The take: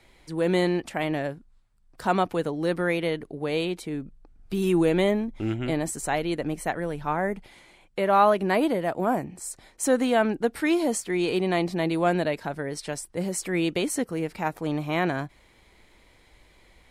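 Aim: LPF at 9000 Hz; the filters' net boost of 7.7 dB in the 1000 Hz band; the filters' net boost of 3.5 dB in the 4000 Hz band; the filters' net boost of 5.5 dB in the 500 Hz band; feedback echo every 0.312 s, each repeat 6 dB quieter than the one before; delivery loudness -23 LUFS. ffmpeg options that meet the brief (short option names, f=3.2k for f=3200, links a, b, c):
-af "lowpass=9k,equalizer=f=500:t=o:g=4.5,equalizer=f=1k:t=o:g=8.5,equalizer=f=4k:t=o:g=4,aecho=1:1:312|624|936|1248|1560|1872:0.501|0.251|0.125|0.0626|0.0313|0.0157,volume=-2.5dB"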